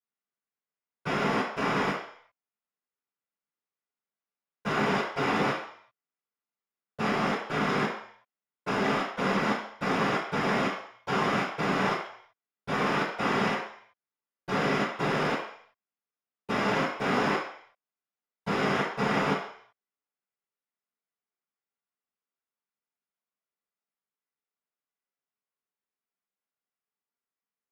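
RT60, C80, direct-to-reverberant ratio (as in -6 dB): 0.60 s, 7.0 dB, -13.0 dB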